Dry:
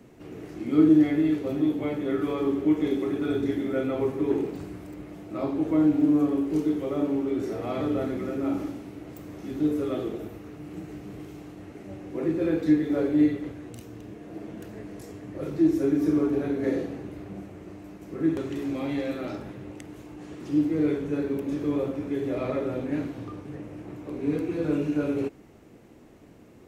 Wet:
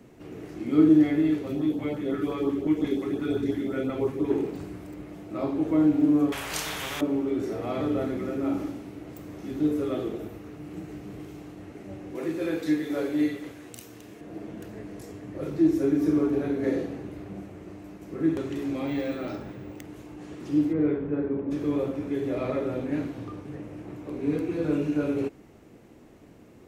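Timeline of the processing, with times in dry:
1.44–4.3 LFO notch saw up 5.7 Hz 310–2700 Hz
6.32–7.01 spectral compressor 10:1
12.15–14.21 tilt +2.5 dB/oct
18.87–19.84 careless resampling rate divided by 2×, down filtered, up hold
20.72–21.5 LPF 2200 Hz -> 1300 Hz

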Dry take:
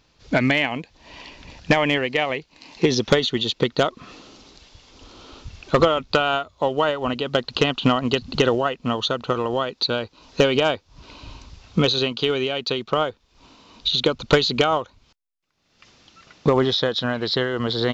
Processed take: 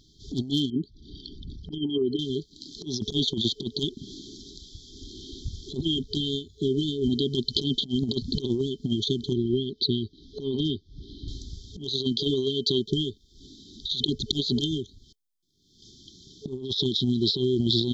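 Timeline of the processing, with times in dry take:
0.7–2.19 formant sharpening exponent 2
9.33–11.28 air absorption 220 m
whole clip: FFT band-reject 430–3100 Hz; negative-ratio compressor -26 dBFS, ratio -0.5; gain +1 dB

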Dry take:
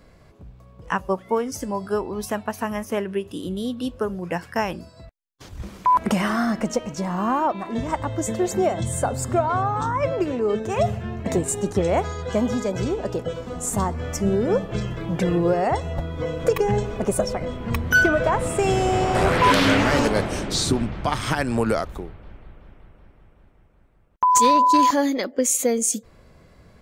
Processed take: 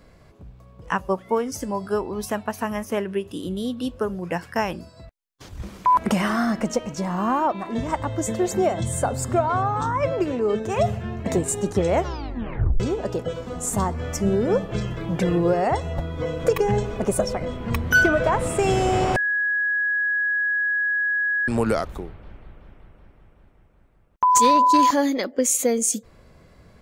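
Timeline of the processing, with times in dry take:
11.94 tape stop 0.86 s
19.16–21.48 bleep 1670 Hz -19.5 dBFS

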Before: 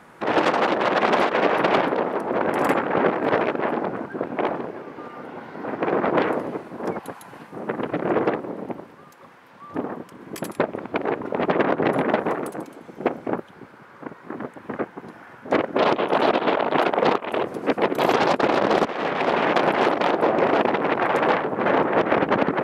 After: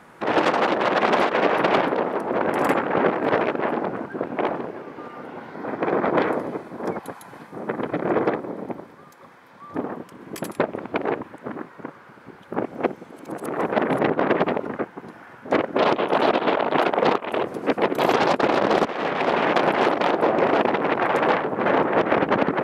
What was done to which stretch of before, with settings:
5.52–9.81 notch 2800 Hz, Q 10
11.23–14.69 reverse

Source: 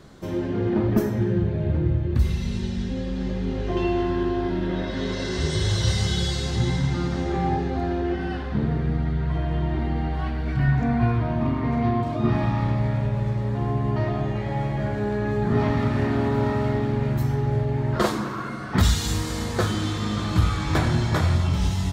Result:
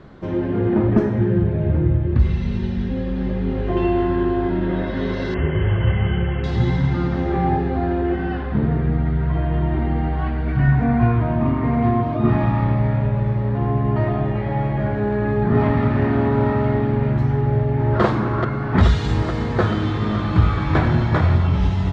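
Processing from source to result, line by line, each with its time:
5.34–6.44 brick-wall FIR low-pass 3300 Hz
17.36–18.01 echo throw 0.43 s, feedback 80%, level -4.5 dB
whole clip: LPF 2400 Hz 12 dB/oct; gain +4.5 dB

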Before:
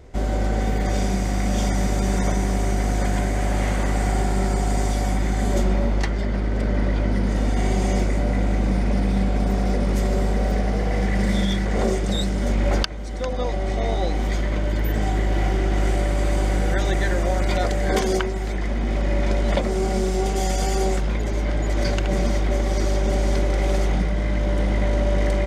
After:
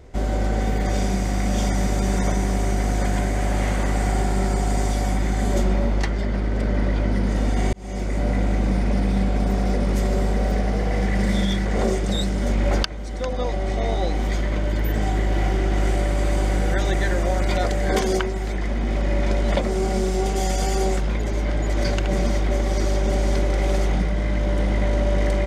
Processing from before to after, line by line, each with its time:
7.73–8.26 fade in

